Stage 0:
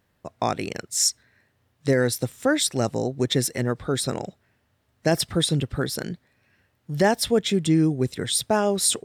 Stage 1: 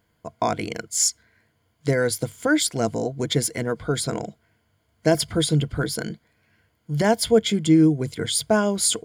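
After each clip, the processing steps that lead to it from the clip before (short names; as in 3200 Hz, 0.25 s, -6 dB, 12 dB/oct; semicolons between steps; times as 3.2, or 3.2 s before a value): ripple EQ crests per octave 1.8, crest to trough 10 dB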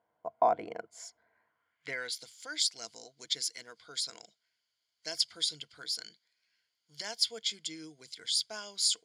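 band-pass sweep 760 Hz -> 4800 Hz, 1.31–2.26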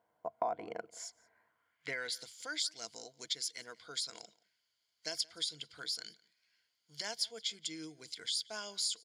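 compressor 2.5:1, threshold -37 dBFS, peak gain reduction 11 dB; outdoor echo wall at 30 m, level -23 dB; gain +1 dB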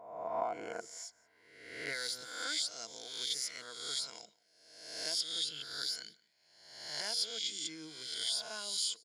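spectral swells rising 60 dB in 0.98 s; gain -3 dB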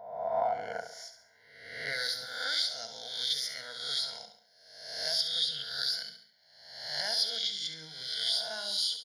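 fixed phaser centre 1700 Hz, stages 8; on a send: feedback echo 69 ms, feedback 45%, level -9 dB; on the sum: gain +6.5 dB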